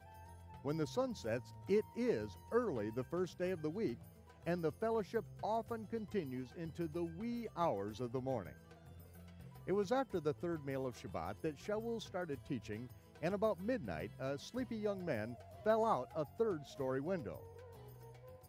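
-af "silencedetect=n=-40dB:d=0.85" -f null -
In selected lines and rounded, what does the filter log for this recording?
silence_start: 8.49
silence_end: 9.69 | silence_duration: 1.20
silence_start: 17.36
silence_end: 18.48 | silence_duration: 1.12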